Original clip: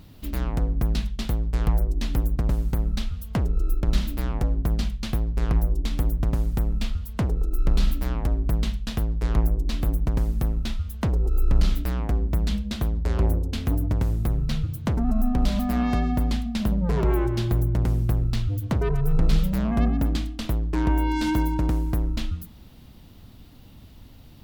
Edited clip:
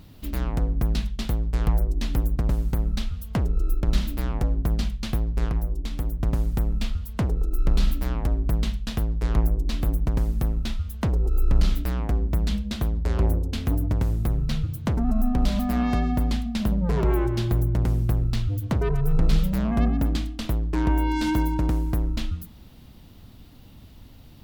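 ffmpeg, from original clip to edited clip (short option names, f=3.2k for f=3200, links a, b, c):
-filter_complex "[0:a]asplit=3[a][b][c];[a]atrim=end=5.492[d];[b]atrim=start=5.488:end=6.232,asetpts=PTS-STARTPTS,volume=-4dB[e];[c]atrim=start=6.228[f];[d][e]acrossfade=d=0.004:c1=hsin:c2=hsin[g];[g][f]acrossfade=d=0.004:c1=hsin:c2=hsin"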